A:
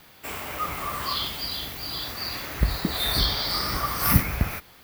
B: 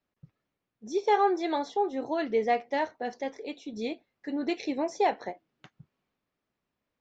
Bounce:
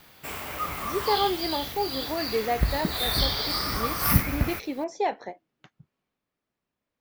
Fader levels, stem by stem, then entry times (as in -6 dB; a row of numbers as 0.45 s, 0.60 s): -1.5 dB, -1.0 dB; 0.00 s, 0.00 s